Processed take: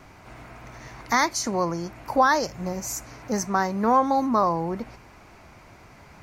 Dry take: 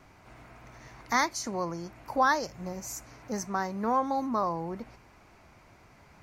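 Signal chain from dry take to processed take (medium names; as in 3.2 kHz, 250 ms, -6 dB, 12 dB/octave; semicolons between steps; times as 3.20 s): loudness maximiser +15.5 dB; trim -8 dB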